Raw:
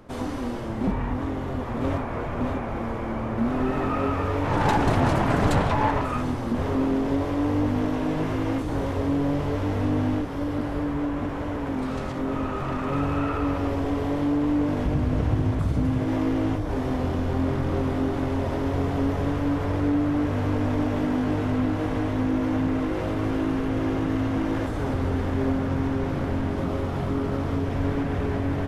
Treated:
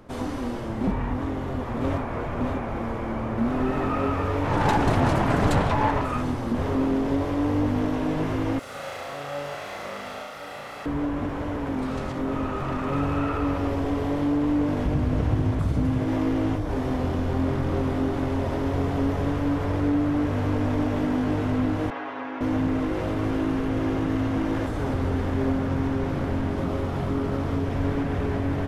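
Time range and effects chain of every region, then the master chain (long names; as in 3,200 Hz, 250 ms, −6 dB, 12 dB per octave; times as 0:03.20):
0:08.59–0:10.86: lower of the sound and its delayed copy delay 1.5 ms + high-pass filter 1,400 Hz 6 dB per octave + flutter between parallel walls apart 6 metres, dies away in 0.86 s
0:21.90–0:22.41: band-pass filter 660–2,600 Hz + comb filter 7.3 ms, depth 79%
whole clip: no processing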